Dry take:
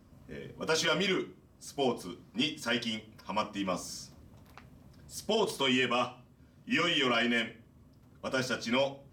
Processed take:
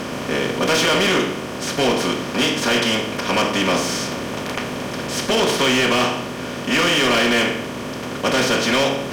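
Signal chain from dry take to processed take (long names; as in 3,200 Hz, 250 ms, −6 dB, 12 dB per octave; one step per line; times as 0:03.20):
compressor on every frequency bin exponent 0.4
hard clipping −21.5 dBFS, distortion −12 dB
level +8.5 dB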